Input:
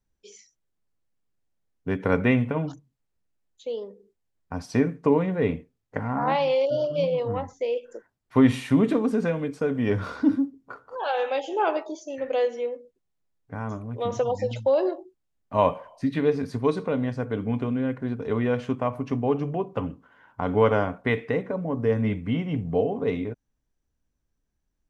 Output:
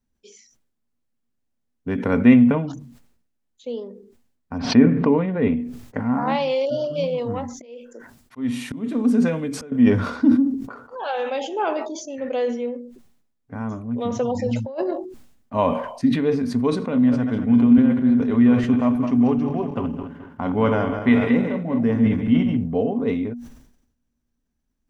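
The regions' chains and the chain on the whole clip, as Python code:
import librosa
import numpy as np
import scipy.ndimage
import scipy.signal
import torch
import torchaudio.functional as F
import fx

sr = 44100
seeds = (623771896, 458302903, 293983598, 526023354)

y = fx.chain(x, sr, fx.lowpass(hz=3600.0, slope=24),
    fx.pre_swell(db_per_s=78.0), at=(4.58, 5.56))
y = fx.chain(y, sr, fx.high_shelf(hz=3900.0, db=6.5),
    fx.auto_swell(attack_ms=530.0), at=(6.15, 9.72))
y = fx.chain(y, sr, fx.peak_eq(hz=3500.0, db=-10.0, octaves=0.37),
    fx.over_compress(threshold_db=-25.0, ratio=-0.5), at=(14.46, 14.91))
y = fx.chain(y, sr, fx.reverse_delay_fb(ms=107, feedback_pct=61, wet_db=-7),
    fx.peak_eq(hz=470.0, db=-5.0, octaves=0.24), at=(16.82, 22.57))
y = fx.peak_eq(y, sr, hz=240.0, db=15.0, octaves=0.22)
y = fx.sustainer(y, sr, db_per_s=71.0)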